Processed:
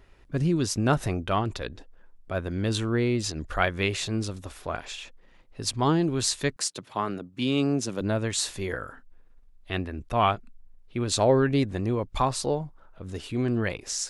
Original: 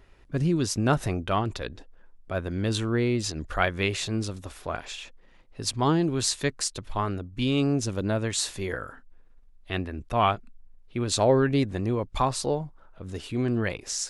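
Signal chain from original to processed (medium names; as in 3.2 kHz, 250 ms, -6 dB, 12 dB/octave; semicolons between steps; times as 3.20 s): 6.56–8.01 s: high-pass 140 Hz 24 dB/octave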